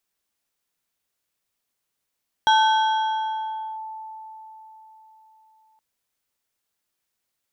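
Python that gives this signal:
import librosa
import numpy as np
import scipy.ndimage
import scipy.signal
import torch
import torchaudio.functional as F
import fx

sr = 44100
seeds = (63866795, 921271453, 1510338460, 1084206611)

y = fx.fm2(sr, length_s=3.32, level_db=-12.5, carrier_hz=877.0, ratio=2.74, index=0.75, index_s=1.32, decay_s=4.33, shape='linear')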